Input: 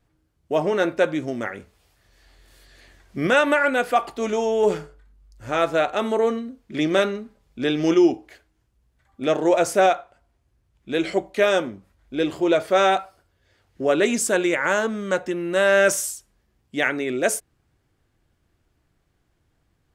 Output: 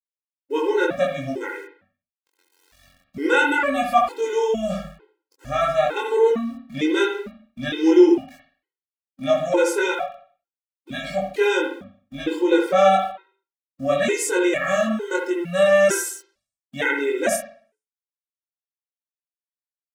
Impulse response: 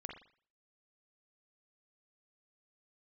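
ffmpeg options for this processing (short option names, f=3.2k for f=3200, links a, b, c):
-filter_complex "[0:a]aeval=exprs='val(0)*gte(abs(val(0)),0.00531)':c=same,asplit=2[a][b];[1:a]atrim=start_sample=2205,adelay=22[c];[b][c]afir=irnorm=-1:irlink=0,volume=4.5dB[d];[a][d]amix=inputs=2:normalize=0,afftfilt=real='re*gt(sin(2*PI*1.1*pts/sr)*(1-2*mod(floor(b*sr/1024/270),2)),0)':imag='im*gt(sin(2*PI*1.1*pts/sr)*(1-2*mod(floor(b*sr/1024/270),2)),0)':win_size=1024:overlap=0.75"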